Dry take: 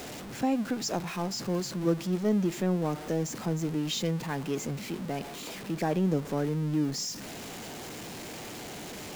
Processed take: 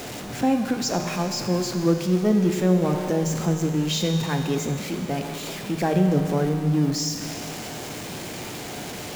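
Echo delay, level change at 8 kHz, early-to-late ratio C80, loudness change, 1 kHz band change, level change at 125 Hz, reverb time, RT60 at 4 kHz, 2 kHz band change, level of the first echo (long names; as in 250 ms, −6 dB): no echo audible, +7.0 dB, 6.5 dB, +7.0 dB, +7.0 dB, +8.0 dB, 2.6 s, 2.6 s, +7.0 dB, no echo audible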